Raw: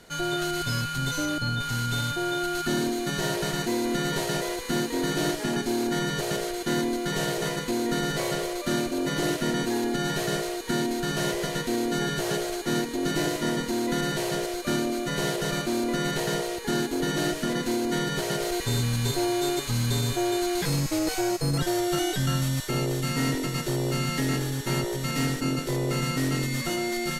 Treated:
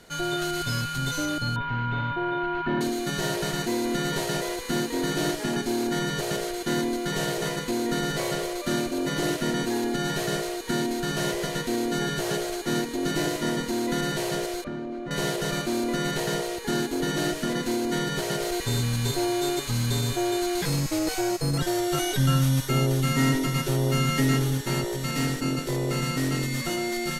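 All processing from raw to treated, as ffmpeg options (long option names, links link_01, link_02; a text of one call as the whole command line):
ffmpeg -i in.wav -filter_complex "[0:a]asettb=1/sr,asplit=3[link_01][link_02][link_03];[link_01]atrim=end=1.564[link_04];[link_02]atrim=start=1.56:end=2.81,asetpts=PTS-STARTPTS,afade=type=in:duration=0.004:curve=qsin,afade=type=out:start_time=1.246:duration=0.004:curve=qsin,lowpass=frequency=2600:width=0.5412,lowpass=frequency=2600:width=1.3066,aeval=exprs='val(0)+0.0224*sin(2*PI*970*n/s)':channel_layout=same[link_05];[link_03]atrim=start=2.806[link_06];[link_04][link_05]acrossfade=duration=0.004:curve1=hsin:curve2=qsin[link_07];[link_07][link_06]acrossfade=duration=0.004:curve1=qsin:curve2=hsin,asettb=1/sr,asplit=3[link_08][link_09][link_10];[link_08]atrim=end=14.644[link_11];[link_09]atrim=start=14.64:end=15.11,asetpts=PTS-STARTPTS,afade=type=in:duration=0.004:curve=qsin,afade=type=out:start_time=0.466:duration=0.004:curve=qsin,lowpass=frequency=1800:poles=1,acompressor=threshold=-30dB:ratio=4:attack=3.2:release=140:knee=1:detection=peak,aemphasis=mode=reproduction:type=75kf[link_12];[link_10]atrim=start=15.106[link_13];[link_11][link_12]acrossfade=duration=0.004:curve1=hsin:curve2=qsin[link_14];[link_14][link_13]acrossfade=duration=0.004:curve1=qsin:curve2=hsin,asettb=1/sr,asplit=3[link_15][link_16][link_17];[link_15]atrim=end=21.944[link_18];[link_16]atrim=start=21.94:end=24.58,asetpts=PTS-STARTPTS,afade=type=in:duration=0.004:curve=qsin,afade=type=out:start_time=2.636:duration=0.004:curve=qsin,aecho=1:1:7.5:0.75,atrim=end_sample=116424,aecho=1:1:430:0.0794,atrim=end_sample=116424[link_19];[link_17]atrim=start=24.576[link_20];[link_18][link_19]acrossfade=duration=0.004:curve1=hsin:curve2=qsin[link_21];[link_21][link_20]acrossfade=duration=0.004:curve1=qsin:curve2=hsin" out.wav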